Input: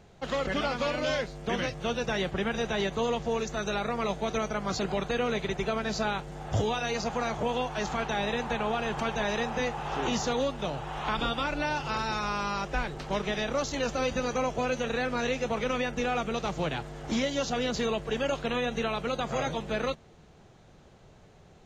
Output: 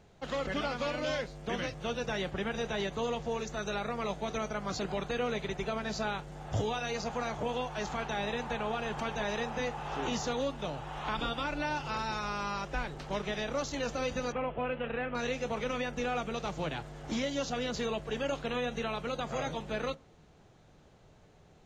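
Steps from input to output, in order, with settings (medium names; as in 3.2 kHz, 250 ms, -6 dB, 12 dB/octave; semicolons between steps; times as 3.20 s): 14.32–15.15 s: elliptic low-pass 3 kHz, stop band 60 dB; FDN reverb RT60 0.32 s, high-frequency decay 0.45×, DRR 16.5 dB; trim -4.5 dB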